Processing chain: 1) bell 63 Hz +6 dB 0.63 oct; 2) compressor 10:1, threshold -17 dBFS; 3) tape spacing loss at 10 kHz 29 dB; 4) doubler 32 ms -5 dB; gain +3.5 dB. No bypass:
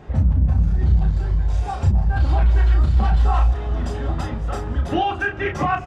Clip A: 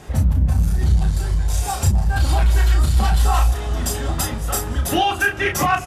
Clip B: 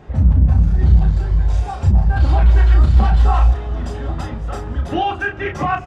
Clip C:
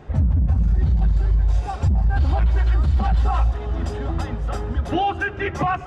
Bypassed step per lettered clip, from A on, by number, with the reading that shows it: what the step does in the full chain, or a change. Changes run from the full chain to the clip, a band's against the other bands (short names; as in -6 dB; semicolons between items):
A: 3, 4 kHz band +8.5 dB; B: 2, mean gain reduction 2.5 dB; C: 4, momentary loudness spread change -1 LU